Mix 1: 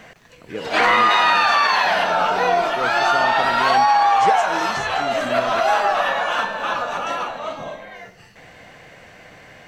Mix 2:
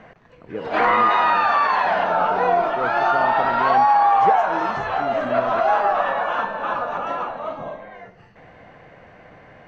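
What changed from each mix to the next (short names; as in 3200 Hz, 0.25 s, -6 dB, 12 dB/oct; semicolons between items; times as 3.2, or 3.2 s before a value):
master: add EQ curve 1100 Hz 0 dB, 6200 Hz -18 dB, 9000 Hz -28 dB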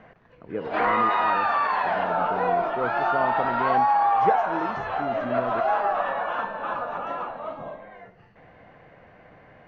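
background -4.5 dB; master: add air absorption 120 m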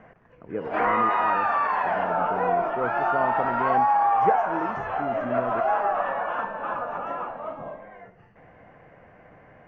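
master: add bell 4000 Hz -14 dB 0.62 oct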